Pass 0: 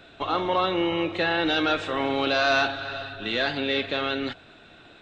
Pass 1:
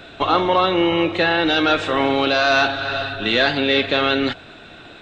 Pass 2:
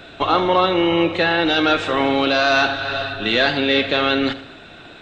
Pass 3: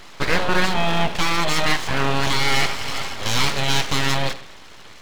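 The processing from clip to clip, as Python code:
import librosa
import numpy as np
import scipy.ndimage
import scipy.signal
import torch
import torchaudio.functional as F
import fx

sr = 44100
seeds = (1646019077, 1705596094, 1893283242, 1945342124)

y1 = fx.rider(x, sr, range_db=3, speed_s=0.5)
y1 = y1 * librosa.db_to_amplitude(7.5)
y2 = fx.echo_feedback(y1, sr, ms=77, feedback_pct=47, wet_db=-15)
y3 = np.abs(y2)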